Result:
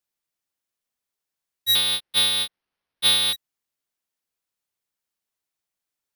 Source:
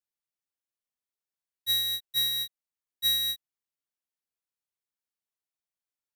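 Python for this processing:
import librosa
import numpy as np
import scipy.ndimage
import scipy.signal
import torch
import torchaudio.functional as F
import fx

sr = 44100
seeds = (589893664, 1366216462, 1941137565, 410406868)

y = fx.resample_bad(x, sr, factor=6, down='none', up='hold', at=(1.75, 3.33))
y = F.gain(torch.from_numpy(y), 7.0).numpy()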